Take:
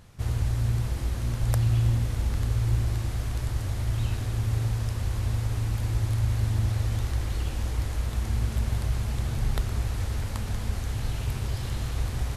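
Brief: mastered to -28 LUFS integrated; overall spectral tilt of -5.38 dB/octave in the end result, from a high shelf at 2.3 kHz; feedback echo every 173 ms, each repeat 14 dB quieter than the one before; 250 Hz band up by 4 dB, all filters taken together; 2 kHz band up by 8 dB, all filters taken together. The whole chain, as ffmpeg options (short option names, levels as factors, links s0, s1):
-af "equalizer=f=250:t=o:g=5.5,equalizer=f=2000:t=o:g=8,highshelf=f=2300:g=3.5,aecho=1:1:173|346:0.2|0.0399,volume=0.944"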